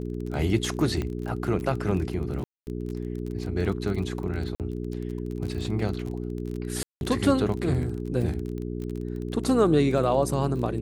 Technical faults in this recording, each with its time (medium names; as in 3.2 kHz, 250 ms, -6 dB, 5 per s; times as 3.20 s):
crackle 24 per s -32 dBFS
hum 60 Hz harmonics 7 -32 dBFS
1.02 s: pop -18 dBFS
2.44–2.67 s: dropout 229 ms
4.55–4.60 s: dropout 48 ms
6.83–7.01 s: dropout 181 ms